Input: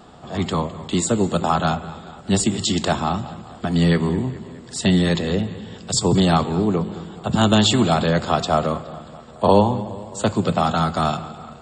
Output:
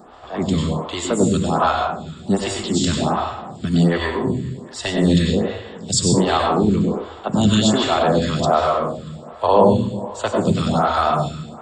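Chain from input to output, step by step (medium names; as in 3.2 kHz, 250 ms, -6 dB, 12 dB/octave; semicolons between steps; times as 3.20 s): reverberation RT60 0.60 s, pre-delay 88 ms, DRR 1 dB; in parallel at -3 dB: peak limiter -10 dBFS, peak gain reduction 9 dB; on the sum: lamp-driven phase shifter 1.3 Hz; trim -1.5 dB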